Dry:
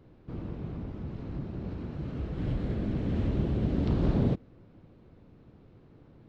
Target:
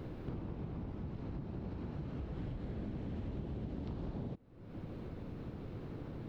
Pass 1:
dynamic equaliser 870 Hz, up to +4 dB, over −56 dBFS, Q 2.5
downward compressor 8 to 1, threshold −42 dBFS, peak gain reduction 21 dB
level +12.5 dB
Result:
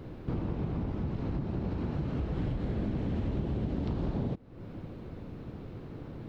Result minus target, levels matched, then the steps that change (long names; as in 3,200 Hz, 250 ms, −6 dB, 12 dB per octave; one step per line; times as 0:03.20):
downward compressor: peak gain reduction −9 dB
change: downward compressor 8 to 1, threshold −52.5 dBFS, peak gain reduction 30 dB